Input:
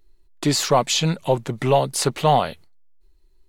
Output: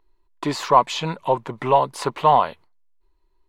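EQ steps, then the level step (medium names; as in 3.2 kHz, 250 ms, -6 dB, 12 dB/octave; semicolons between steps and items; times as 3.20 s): tone controls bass -7 dB, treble -12 dB; peaking EQ 1 kHz +13.5 dB 0.31 oct; -1.5 dB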